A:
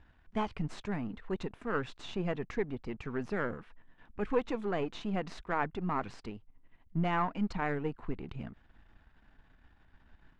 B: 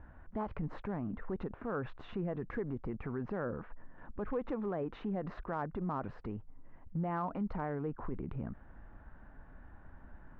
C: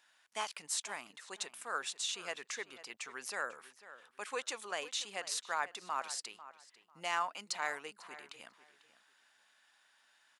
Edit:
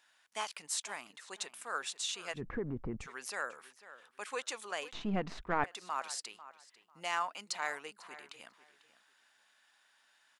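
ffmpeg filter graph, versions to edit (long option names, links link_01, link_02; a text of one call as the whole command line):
ffmpeg -i take0.wav -i take1.wav -i take2.wav -filter_complex "[2:a]asplit=3[link_01][link_02][link_03];[link_01]atrim=end=2.42[link_04];[1:a]atrim=start=2.32:end=3.08[link_05];[link_02]atrim=start=2.98:end=4.932[link_06];[0:a]atrim=start=4.928:end=5.642[link_07];[link_03]atrim=start=5.638[link_08];[link_04][link_05]acrossfade=duration=0.1:curve1=tri:curve2=tri[link_09];[link_09][link_06]acrossfade=duration=0.1:curve1=tri:curve2=tri[link_10];[link_10][link_07]acrossfade=duration=0.004:curve1=hsin:curve2=hsin[link_11];[link_11][link_08]acrossfade=duration=0.004:curve1=hsin:curve2=hsin" out.wav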